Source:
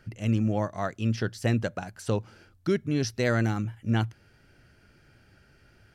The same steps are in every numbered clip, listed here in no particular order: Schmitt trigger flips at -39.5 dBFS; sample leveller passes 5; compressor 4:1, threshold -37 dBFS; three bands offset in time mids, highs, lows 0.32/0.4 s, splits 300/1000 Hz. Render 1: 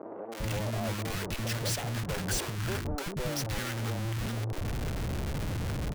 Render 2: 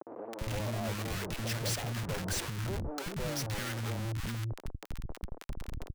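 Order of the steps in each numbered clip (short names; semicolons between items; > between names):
compressor > sample leveller > Schmitt trigger > three bands offset in time; sample leveller > Schmitt trigger > compressor > three bands offset in time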